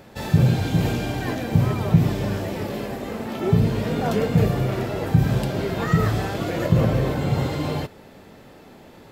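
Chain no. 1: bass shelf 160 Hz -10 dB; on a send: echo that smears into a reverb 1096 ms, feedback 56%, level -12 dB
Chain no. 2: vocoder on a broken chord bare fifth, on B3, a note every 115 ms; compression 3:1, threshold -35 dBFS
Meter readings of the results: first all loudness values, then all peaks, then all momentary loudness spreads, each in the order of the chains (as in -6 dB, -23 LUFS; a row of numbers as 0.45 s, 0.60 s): -26.0 LUFS, -35.0 LUFS; -8.5 dBFS, -21.5 dBFS; 11 LU, 9 LU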